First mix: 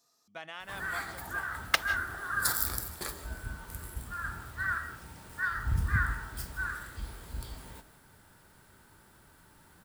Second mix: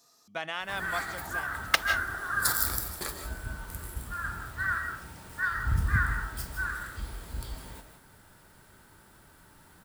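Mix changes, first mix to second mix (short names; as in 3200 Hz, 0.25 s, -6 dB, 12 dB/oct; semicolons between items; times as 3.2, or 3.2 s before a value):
speech +8.5 dB; background: send +8.5 dB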